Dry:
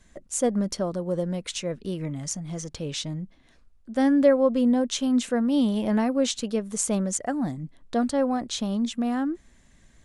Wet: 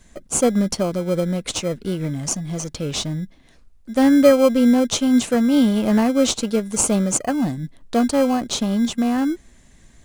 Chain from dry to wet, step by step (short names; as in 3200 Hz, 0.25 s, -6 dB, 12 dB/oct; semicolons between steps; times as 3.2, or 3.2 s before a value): high shelf 5000 Hz +5 dB; in parallel at -9 dB: sample-and-hold 24×; on the sum: gain +4 dB